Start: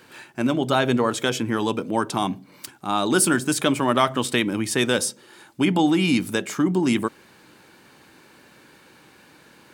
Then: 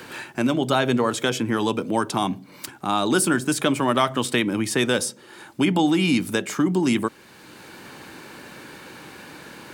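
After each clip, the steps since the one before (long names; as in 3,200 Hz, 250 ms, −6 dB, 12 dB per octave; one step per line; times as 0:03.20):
multiband upward and downward compressor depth 40%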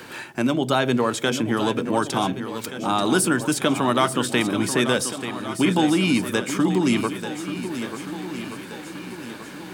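feedback echo with a long and a short gap by turns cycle 1,476 ms, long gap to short 1.5 to 1, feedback 44%, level −10 dB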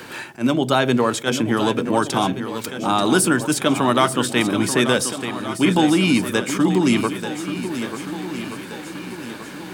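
level that may rise only so fast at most 320 dB per second
level +3 dB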